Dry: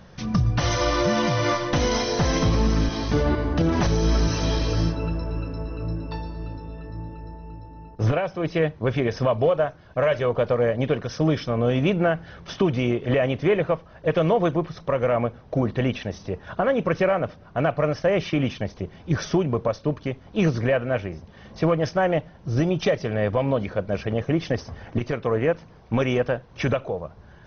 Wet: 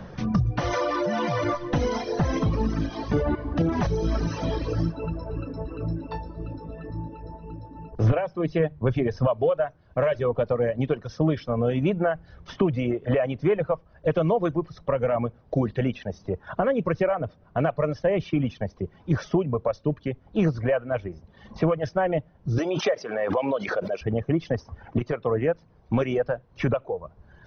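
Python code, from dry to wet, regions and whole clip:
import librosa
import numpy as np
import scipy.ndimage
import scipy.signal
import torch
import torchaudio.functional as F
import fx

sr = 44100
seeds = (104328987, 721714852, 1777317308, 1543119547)

y = fx.chain(x, sr, fx.highpass(hz=370.0, slope=6),
    fx.env_flatten(amount_pct=100), at=(0.73, 1.44))
y = fx.chain(y, sr, fx.low_shelf(hz=110.0, db=9.0),
    fx.hum_notches(base_hz=50, count=4), at=(7.92, 9.27))
y = fx.chain(y, sr, fx.highpass(hz=370.0, slope=12),
    fx.high_shelf(hz=3500.0, db=11.5),
    fx.pre_swell(db_per_s=40.0), at=(22.58, 24.01))
y = fx.dereverb_blind(y, sr, rt60_s=1.7)
y = fx.high_shelf(y, sr, hz=2300.0, db=-11.0)
y = fx.band_squash(y, sr, depth_pct=40)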